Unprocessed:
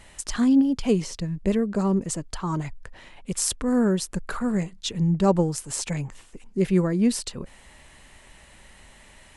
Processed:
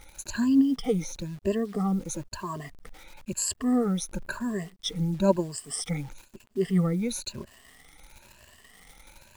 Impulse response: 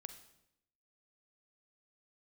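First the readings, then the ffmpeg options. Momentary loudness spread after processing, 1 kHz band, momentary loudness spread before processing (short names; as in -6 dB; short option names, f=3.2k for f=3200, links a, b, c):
13 LU, -4.0 dB, 12 LU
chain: -af "afftfilt=real='re*pow(10,22/40*sin(2*PI*(1.4*log(max(b,1)*sr/1024/100)/log(2)-(1)*(pts-256)/sr)))':imag='im*pow(10,22/40*sin(2*PI*(1.4*log(max(b,1)*sr/1024/100)/log(2)-(1)*(pts-256)/sr)))':win_size=1024:overlap=0.75,acrusher=bits=8:dc=4:mix=0:aa=0.000001,volume=-8.5dB"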